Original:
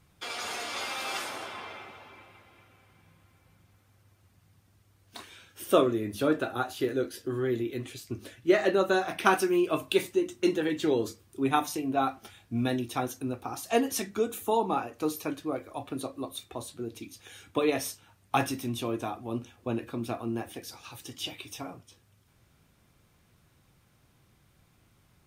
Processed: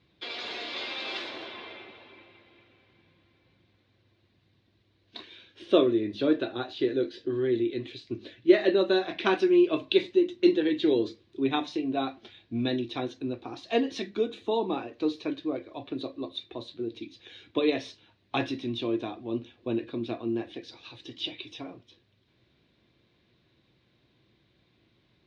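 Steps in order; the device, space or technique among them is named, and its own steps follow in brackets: guitar cabinet (cabinet simulation 78–4200 Hz, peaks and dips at 89 Hz -9 dB, 160 Hz -6 dB, 340 Hz +6 dB, 820 Hz -7 dB, 1.3 kHz -10 dB, 3.9 kHz +8 dB)

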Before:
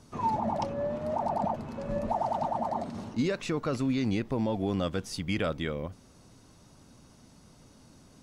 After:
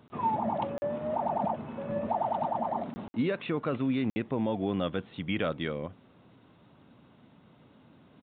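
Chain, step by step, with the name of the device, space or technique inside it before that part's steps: call with lost packets (high-pass 120 Hz 12 dB/octave; resampled via 8 kHz; lost packets of 20 ms bursts)

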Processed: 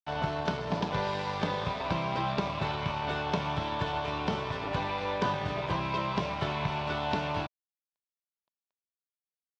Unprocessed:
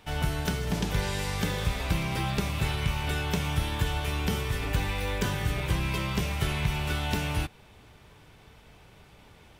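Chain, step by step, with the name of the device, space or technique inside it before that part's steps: blown loudspeaker (crossover distortion -41.5 dBFS; cabinet simulation 140–4600 Hz, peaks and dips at 630 Hz +9 dB, 990 Hz +10 dB, 2 kHz -4 dB, 2.9 kHz -3 dB)

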